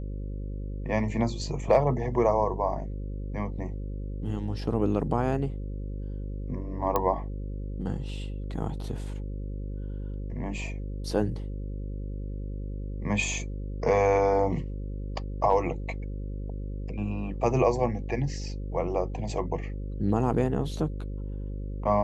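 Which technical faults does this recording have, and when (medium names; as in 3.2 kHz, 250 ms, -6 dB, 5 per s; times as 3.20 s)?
buzz 50 Hz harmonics 11 -34 dBFS
6.96 s: pop -12 dBFS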